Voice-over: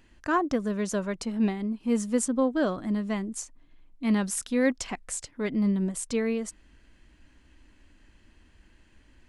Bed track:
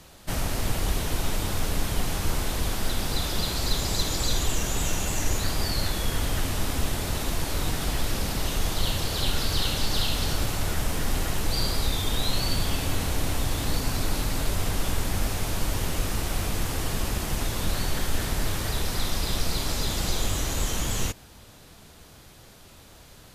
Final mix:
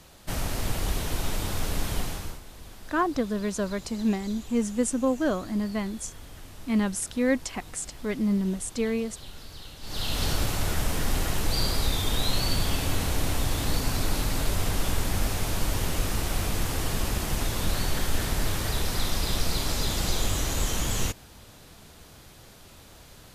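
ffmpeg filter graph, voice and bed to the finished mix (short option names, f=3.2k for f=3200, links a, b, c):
-filter_complex "[0:a]adelay=2650,volume=0dB[a];[1:a]volume=16dB,afade=t=out:st=1.96:d=0.44:silence=0.158489,afade=t=in:st=9.81:d=0.43:silence=0.125893[b];[a][b]amix=inputs=2:normalize=0"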